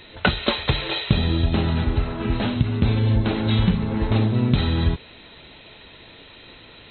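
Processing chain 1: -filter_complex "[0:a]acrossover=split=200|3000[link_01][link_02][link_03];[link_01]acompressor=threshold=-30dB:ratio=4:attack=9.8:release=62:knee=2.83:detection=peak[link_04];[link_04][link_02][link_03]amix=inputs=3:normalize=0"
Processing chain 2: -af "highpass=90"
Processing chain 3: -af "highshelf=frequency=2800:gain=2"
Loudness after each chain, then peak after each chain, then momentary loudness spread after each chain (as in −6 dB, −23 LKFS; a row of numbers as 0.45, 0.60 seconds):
−25.0, −23.0, −22.0 LKFS; −4.5, −5.0, −4.5 dBFS; 20, 5, 4 LU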